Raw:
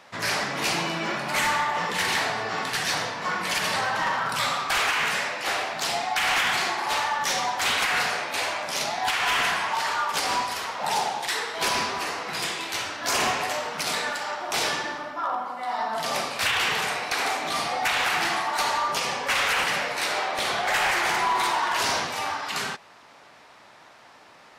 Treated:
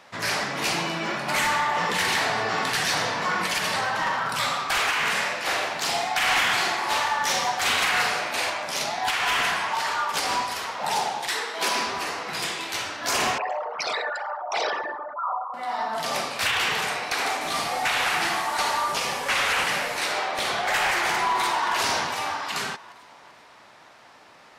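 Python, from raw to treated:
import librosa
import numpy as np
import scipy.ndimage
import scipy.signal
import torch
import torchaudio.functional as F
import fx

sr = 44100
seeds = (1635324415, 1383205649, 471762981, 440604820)

y = fx.env_flatten(x, sr, amount_pct=50, at=(1.28, 3.47))
y = fx.echo_multitap(y, sr, ms=(45, 163), db=(-5.0, -13.5), at=(5.01, 8.5))
y = fx.highpass(y, sr, hz=190.0, slope=24, at=(11.39, 11.87))
y = fx.envelope_sharpen(y, sr, power=3.0, at=(13.38, 15.54))
y = fx.delta_mod(y, sr, bps=64000, step_db=-29.5, at=(17.41, 20.05))
y = fx.echo_throw(y, sr, start_s=21.27, length_s=0.48, ms=390, feedback_pct=45, wet_db=-8.5)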